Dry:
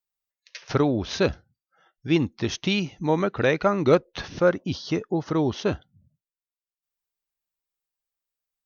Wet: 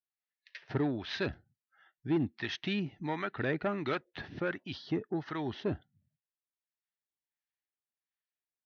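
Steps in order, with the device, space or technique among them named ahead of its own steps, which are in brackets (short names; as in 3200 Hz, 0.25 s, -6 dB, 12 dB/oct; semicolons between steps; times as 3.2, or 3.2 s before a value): guitar amplifier with harmonic tremolo (harmonic tremolo 1.4 Hz, depth 70%, crossover 770 Hz; soft clip -18 dBFS, distortion -15 dB; speaker cabinet 95–4100 Hz, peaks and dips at 180 Hz -3 dB, 510 Hz -9 dB, 1100 Hz -5 dB, 1800 Hz +8 dB); gain -3.5 dB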